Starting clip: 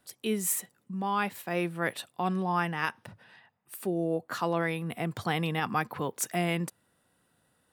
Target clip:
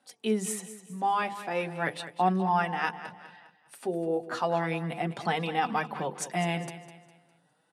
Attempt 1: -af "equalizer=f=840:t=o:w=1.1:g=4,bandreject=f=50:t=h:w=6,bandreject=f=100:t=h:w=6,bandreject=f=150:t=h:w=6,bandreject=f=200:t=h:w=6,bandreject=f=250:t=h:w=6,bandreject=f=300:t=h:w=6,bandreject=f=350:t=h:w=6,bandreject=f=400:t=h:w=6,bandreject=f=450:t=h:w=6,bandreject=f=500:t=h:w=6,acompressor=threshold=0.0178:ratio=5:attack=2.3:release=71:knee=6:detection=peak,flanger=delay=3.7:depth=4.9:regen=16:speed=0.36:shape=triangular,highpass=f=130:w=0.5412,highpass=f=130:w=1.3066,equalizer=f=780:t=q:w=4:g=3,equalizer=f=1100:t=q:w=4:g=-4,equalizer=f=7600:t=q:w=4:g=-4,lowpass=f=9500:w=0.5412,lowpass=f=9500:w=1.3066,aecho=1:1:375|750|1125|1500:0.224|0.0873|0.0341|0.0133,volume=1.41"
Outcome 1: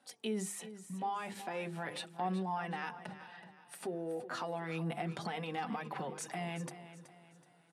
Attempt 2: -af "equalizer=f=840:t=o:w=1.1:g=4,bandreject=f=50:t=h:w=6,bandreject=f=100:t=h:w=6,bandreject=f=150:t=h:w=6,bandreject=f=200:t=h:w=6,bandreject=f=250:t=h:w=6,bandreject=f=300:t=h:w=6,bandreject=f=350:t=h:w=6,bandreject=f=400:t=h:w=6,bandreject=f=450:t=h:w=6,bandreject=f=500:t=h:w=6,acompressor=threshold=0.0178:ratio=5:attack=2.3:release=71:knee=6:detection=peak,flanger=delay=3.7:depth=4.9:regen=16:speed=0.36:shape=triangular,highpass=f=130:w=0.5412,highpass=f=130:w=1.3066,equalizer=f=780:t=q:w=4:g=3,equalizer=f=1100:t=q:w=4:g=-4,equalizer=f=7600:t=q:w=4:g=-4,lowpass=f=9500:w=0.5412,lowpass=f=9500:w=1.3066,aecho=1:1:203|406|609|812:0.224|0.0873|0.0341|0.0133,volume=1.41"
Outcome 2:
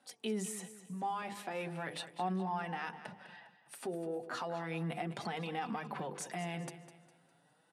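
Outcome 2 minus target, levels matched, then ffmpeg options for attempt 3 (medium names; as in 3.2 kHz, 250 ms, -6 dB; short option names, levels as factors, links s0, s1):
compression: peak gain reduction +14.5 dB
-af "equalizer=f=840:t=o:w=1.1:g=4,bandreject=f=50:t=h:w=6,bandreject=f=100:t=h:w=6,bandreject=f=150:t=h:w=6,bandreject=f=200:t=h:w=6,bandreject=f=250:t=h:w=6,bandreject=f=300:t=h:w=6,bandreject=f=350:t=h:w=6,bandreject=f=400:t=h:w=6,bandreject=f=450:t=h:w=6,bandreject=f=500:t=h:w=6,flanger=delay=3.7:depth=4.9:regen=16:speed=0.36:shape=triangular,highpass=f=130:w=0.5412,highpass=f=130:w=1.3066,equalizer=f=780:t=q:w=4:g=3,equalizer=f=1100:t=q:w=4:g=-4,equalizer=f=7600:t=q:w=4:g=-4,lowpass=f=9500:w=0.5412,lowpass=f=9500:w=1.3066,aecho=1:1:203|406|609|812:0.224|0.0873|0.0341|0.0133,volume=1.41"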